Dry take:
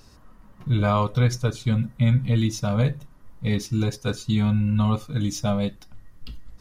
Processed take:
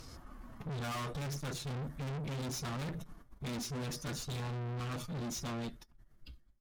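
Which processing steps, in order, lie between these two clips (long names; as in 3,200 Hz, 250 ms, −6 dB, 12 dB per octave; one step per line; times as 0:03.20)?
fade-out on the ending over 1.81 s
phase-vocoder pitch shift with formants kept +2.5 semitones
tube saturation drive 40 dB, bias 0.25
level +2.5 dB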